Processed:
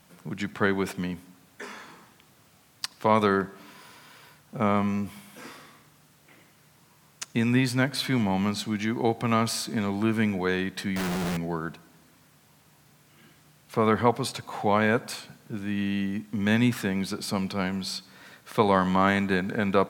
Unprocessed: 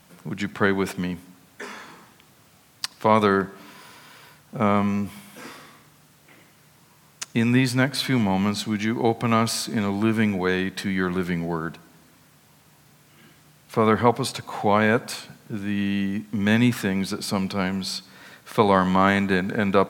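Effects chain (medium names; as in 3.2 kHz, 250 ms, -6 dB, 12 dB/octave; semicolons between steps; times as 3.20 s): 10.96–11.37 s: Schmitt trigger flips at -38 dBFS; trim -3.5 dB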